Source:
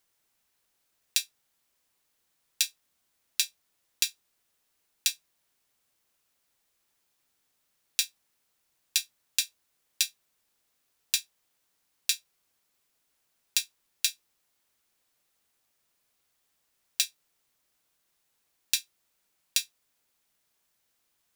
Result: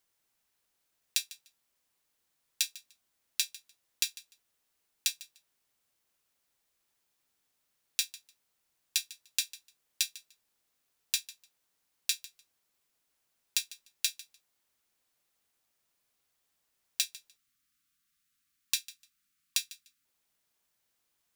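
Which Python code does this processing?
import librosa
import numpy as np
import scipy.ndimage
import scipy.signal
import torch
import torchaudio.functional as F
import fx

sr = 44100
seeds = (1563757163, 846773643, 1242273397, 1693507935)

p1 = fx.spec_box(x, sr, start_s=17.36, length_s=2.68, low_hz=320.0, high_hz=1100.0, gain_db=-25)
p2 = p1 + fx.echo_feedback(p1, sr, ms=149, feedback_pct=17, wet_db=-18.5, dry=0)
y = p2 * librosa.db_to_amplitude(-3.5)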